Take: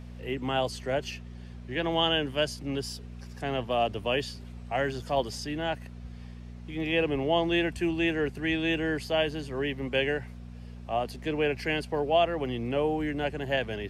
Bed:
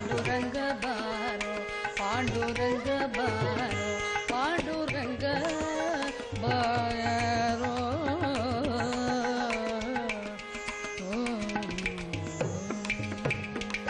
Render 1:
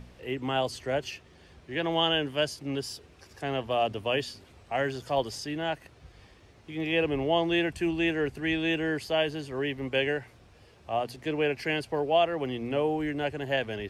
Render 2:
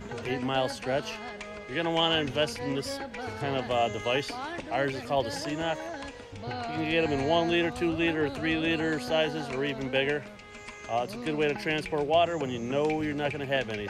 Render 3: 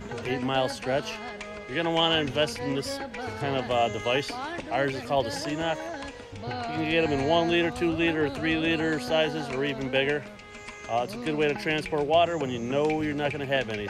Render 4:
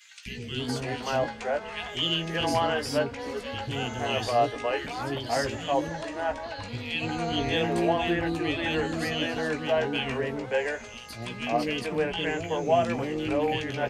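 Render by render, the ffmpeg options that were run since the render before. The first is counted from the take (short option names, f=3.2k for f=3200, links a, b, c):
-af "bandreject=f=60:t=h:w=4,bandreject=f=120:t=h:w=4,bandreject=f=180:t=h:w=4,bandreject=f=240:t=h:w=4"
-filter_complex "[1:a]volume=-7.5dB[a];[0:a][a]amix=inputs=2:normalize=0"
-af "volume=2dB"
-filter_complex "[0:a]asplit=2[a][b];[b]adelay=17,volume=-7dB[c];[a][c]amix=inputs=2:normalize=0,acrossover=split=380|2200[d][e][f];[d]adelay=260[g];[e]adelay=580[h];[g][h][f]amix=inputs=3:normalize=0"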